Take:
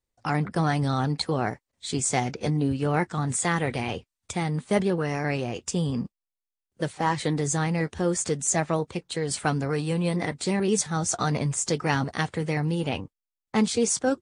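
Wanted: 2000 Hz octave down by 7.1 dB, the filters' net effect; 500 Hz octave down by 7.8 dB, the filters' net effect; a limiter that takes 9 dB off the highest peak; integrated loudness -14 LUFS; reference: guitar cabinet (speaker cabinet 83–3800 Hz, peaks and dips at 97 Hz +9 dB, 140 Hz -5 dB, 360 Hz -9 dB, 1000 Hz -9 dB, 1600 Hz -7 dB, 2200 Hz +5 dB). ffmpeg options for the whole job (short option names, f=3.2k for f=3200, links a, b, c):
-af "equalizer=f=500:t=o:g=-6,equalizer=f=2k:t=o:g=-7,alimiter=limit=-20.5dB:level=0:latency=1,highpass=83,equalizer=f=97:t=q:w=4:g=9,equalizer=f=140:t=q:w=4:g=-5,equalizer=f=360:t=q:w=4:g=-9,equalizer=f=1k:t=q:w=4:g=-9,equalizer=f=1.6k:t=q:w=4:g=-7,equalizer=f=2.2k:t=q:w=4:g=5,lowpass=f=3.8k:w=0.5412,lowpass=f=3.8k:w=1.3066,volume=19.5dB"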